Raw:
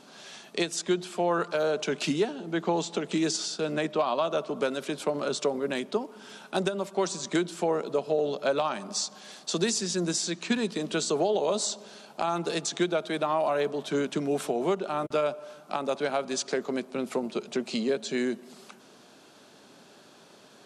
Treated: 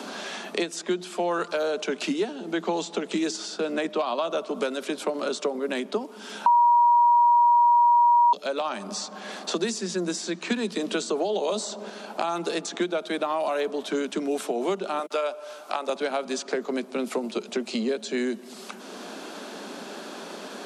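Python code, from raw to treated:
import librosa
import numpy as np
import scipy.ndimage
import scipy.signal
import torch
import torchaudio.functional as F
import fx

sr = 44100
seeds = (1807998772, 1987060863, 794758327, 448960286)

y = fx.band_squash(x, sr, depth_pct=40, at=(10.47, 11.9))
y = fx.highpass(y, sr, hz=470.0, slope=12, at=(14.99, 15.89))
y = fx.edit(y, sr, fx.bleep(start_s=6.46, length_s=1.87, hz=955.0, db=-8.0), tone=tone)
y = scipy.signal.sosfilt(scipy.signal.butter(12, 180.0, 'highpass', fs=sr, output='sos'), y)
y = fx.band_squash(y, sr, depth_pct=70)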